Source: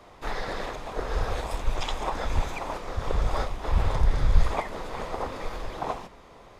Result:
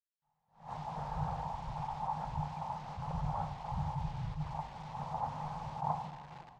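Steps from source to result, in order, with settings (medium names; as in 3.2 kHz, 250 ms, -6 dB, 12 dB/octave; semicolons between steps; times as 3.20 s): bass shelf 330 Hz +7.5 dB; level rider gain up to 6.5 dB; two resonant band-passes 360 Hz, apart 2.5 oct; bit crusher 8-bit; distance through air 140 m; doubling 38 ms -14 dB; reverberation RT60 3.0 s, pre-delay 4 ms, DRR 10.5 dB; attacks held to a fixed rise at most 160 dB/s; trim -2.5 dB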